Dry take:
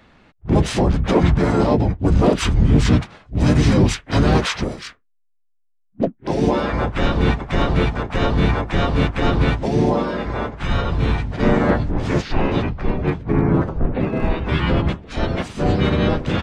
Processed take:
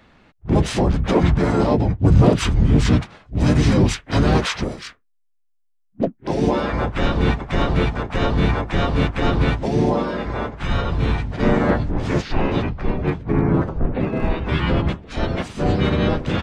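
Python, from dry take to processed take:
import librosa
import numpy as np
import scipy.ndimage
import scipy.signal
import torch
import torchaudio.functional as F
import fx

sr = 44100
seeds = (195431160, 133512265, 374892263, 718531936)

y = fx.peak_eq(x, sr, hz=120.0, db=fx.line((1.89, 7.0), (2.42, 13.5)), octaves=0.77, at=(1.89, 2.42), fade=0.02)
y = y * librosa.db_to_amplitude(-1.0)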